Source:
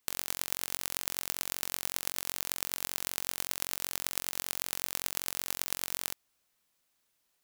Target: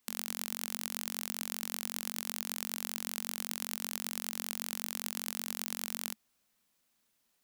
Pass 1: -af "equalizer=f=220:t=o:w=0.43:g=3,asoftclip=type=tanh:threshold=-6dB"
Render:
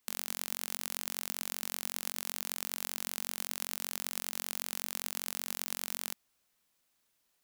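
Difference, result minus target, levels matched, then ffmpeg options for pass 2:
250 Hz band -5.0 dB
-af "equalizer=f=220:t=o:w=0.43:g=10,asoftclip=type=tanh:threshold=-6dB"

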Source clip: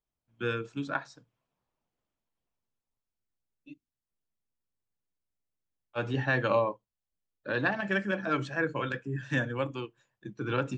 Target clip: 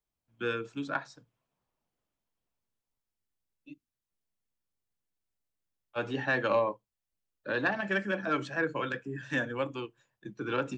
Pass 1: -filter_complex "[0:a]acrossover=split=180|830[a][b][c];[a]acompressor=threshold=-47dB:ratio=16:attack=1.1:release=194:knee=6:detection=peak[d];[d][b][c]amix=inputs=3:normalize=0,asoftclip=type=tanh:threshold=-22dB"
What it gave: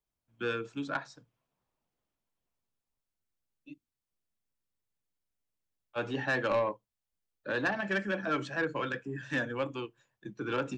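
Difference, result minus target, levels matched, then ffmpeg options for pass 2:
soft clip: distortion +12 dB
-filter_complex "[0:a]acrossover=split=180|830[a][b][c];[a]acompressor=threshold=-47dB:ratio=16:attack=1.1:release=194:knee=6:detection=peak[d];[d][b][c]amix=inputs=3:normalize=0,asoftclip=type=tanh:threshold=-14.5dB"

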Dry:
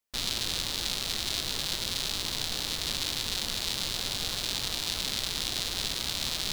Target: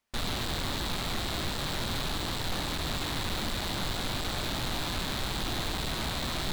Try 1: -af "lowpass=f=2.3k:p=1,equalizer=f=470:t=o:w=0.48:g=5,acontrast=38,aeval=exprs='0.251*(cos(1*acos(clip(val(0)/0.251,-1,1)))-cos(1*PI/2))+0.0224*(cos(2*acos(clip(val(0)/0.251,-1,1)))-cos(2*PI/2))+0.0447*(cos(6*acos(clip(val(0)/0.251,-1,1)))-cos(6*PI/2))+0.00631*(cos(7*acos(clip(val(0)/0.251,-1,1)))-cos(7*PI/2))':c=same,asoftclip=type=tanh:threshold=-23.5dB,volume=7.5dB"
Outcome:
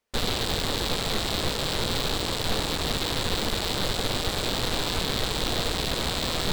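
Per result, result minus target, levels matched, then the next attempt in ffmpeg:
soft clip: distortion -6 dB; 500 Hz band +3.0 dB
-af "lowpass=f=2.3k:p=1,equalizer=f=470:t=o:w=0.48:g=5,acontrast=38,aeval=exprs='0.251*(cos(1*acos(clip(val(0)/0.251,-1,1)))-cos(1*PI/2))+0.0224*(cos(2*acos(clip(val(0)/0.251,-1,1)))-cos(2*PI/2))+0.0447*(cos(6*acos(clip(val(0)/0.251,-1,1)))-cos(6*PI/2))+0.00631*(cos(7*acos(clip(val(0)/0.251,-1,1)))-cos(7*PI/2))':c=same,asoftclip=type=tanh:threshold=-34dB,volume=7.5dB"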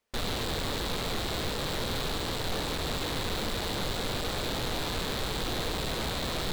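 500 Hz band +4.5 dB
-af "lowpass=f=2.3k:p=1,equalizer=f=470:t=o:w=0.48:g=-6,acontrast=38,aeval=exprs='0.251*(cos(1*acos(clip(val(0)/0.251,-1,1)))-cos(1*PI/2))+0.0224*(cos(2*acos(clip(val(0)/0.251,-1,1)))-cos(2*PI/2))+0.0447*(cos(6*acos(clip(val(0)/0.251,-1,1)))-cos(6*PI/2))+0.00631*(cos(7*acos(clip(val(0)/0.251,-1,1)))-cos(7*PI/2))':c=same,asoftclip=type=tanh:threshold=-34dB,volume=7.5dB"

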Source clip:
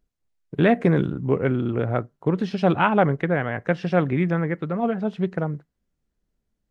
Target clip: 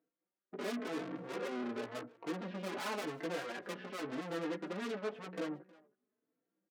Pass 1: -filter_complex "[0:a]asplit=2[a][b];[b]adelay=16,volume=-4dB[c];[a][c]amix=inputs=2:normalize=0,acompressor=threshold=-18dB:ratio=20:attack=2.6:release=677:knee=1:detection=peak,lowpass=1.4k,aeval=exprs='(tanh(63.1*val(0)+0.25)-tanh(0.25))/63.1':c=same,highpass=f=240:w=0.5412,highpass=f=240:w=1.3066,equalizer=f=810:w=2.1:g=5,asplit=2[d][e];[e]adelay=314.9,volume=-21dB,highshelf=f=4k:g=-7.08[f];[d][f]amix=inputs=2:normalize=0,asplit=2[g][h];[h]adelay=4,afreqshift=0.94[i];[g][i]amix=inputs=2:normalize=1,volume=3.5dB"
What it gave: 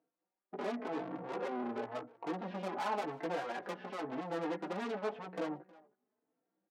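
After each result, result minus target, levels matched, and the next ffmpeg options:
compressor: peak gain reduction +11.5 dB; 1000 Hz band +4.5 dB
-filter_complex "[0:a]lowpass=1.4k,asplit=2[a][b];[b]adelay=16,volume=-4dB[c];[a][c]amix=inputs=2:normalize=0,aeval=exprs='(tanh(63.1*val(0)+0.25)-tanh(0.25))/63.1':c=same,highpass=f=240:w=0.5412,highpass=f=240:w=1.3066,equalizer=f=810:w=2.1:g=5,asplit=2[d][e];[e]adelay=314.9,volume=-21dB,highshelf=f=4k:g=-7.08[f];[d][f]amix=inputs=2:normalize=0,asplit=2[g][h];[h]adelay=4,afreqshift=0.94[i];[g][i]amix=inputs=2:normalize=1,volume=3.5dB"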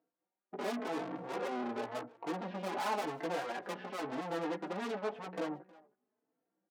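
1000 Hz band +4.5 dB
-filter_complex "[0:a]lowpass=1.4k,asplit=2[a][b];[b]adelay=16,volume=-4dB[c];[a][c]amix=inputs=2:normalize=0,aeval=exprs='(tanh(63.1*val(0)+0.25)-tanh(0.25))/63.1':c=same,highpass=f=240:w=0.5412,highpass=f=240:w=1.3066,equalizer=f=810:w=2.1:g=-5,asplit=2[d][e];[e]adelay=314.9,volume=-21dB,highshelf=f=4k:g=-7.08[f];[d][f]amix=inputs=2:normalize=0,asplit=2[g][h];[h]adelay=4,afreqshift=0.94[i];[g][i]amix=inputs=2:normalize=1,volume=3.5dB"

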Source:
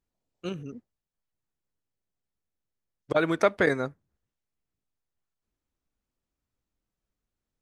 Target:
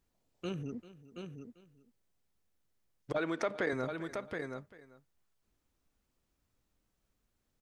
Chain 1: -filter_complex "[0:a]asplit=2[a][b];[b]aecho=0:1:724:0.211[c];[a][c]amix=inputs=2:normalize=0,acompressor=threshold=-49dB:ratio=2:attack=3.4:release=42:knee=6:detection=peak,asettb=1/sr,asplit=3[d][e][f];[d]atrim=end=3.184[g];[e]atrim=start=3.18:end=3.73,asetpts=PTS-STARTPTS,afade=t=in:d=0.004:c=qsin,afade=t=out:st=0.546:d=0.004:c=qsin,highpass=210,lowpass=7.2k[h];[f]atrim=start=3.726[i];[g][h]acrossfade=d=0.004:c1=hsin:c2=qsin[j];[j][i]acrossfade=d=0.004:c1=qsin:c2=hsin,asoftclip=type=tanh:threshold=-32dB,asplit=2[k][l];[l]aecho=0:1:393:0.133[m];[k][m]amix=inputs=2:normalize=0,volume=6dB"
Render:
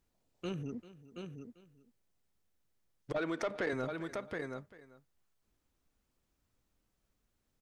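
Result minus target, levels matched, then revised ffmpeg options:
soft clip: distortion +12 dB
-filter_complex "[0:a]asplit=2[a][b];[b]aecho=0:1:724:0.211[c];[a][c]amix=inputs=2:normalize=0,acompressor=threshold=-49dB:ratio=2:attack=3.4:release=42:knee=6:detection=peak,asettb=1/sr,asplit=3[d][e][f];[d]atrim=end=3.184[g];[e]atrim=start=3.18:end=3.73,asetpts=PTS-STARTPTS,afade=t=in:d=0.004:c=qsin,afade=t=out:st=0.546:d=0.004:c=qsin,highpass=210,lowpass=7.2k[h];[f]atrim=start=3.726[i];[g][h]acrossfade=d=0.004:c1=hsin:c2=qsin[j];[j][i]acrossfade=d=0.004:c1=qsin:c2=hsin,asoftclip=type=tanh:threshold=-23.5dB,asplit=2[k][l];[l]aecho=0:1:393:0.133[m];[k][m]amix=inputs=2:normalize=0,volume=6dB"

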